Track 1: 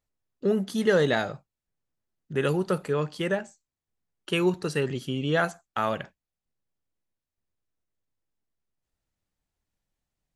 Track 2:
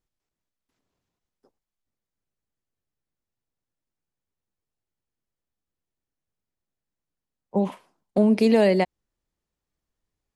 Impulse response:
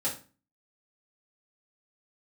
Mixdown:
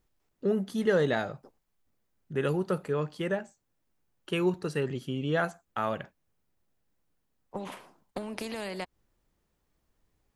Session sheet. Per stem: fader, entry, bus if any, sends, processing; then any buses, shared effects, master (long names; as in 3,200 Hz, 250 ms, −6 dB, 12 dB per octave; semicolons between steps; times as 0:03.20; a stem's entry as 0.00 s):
−3.0 dB, 0.00 s, no send, no processing
−2.0 dB, 0.00 s, no send, downward compressor, threshold −23 dBFS, peak gain reduction 9 dB; every bin compressed towards the loudest bin 2 to 1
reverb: not used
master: parametric band 6,000 Hz −5 dB 2.6 octaves